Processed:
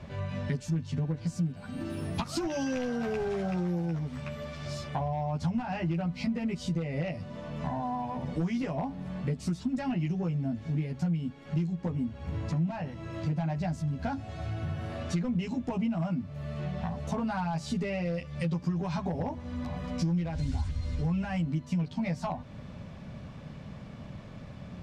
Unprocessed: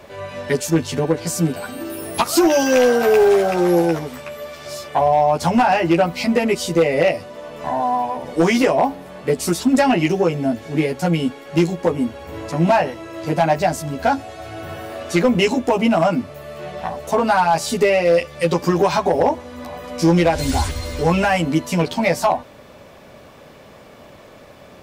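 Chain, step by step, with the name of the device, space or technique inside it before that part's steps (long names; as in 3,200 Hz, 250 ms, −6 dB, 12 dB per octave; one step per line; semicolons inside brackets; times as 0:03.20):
jukebox (low-pass filter 6,200 Hz 12 dB per octave; low shelf with overshoot 260 Hz +13 dB, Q 1.5; downward compressor 4 to 1, threshold −23 dBFS, peak gain reduction 20 dB)
level −7.5 dB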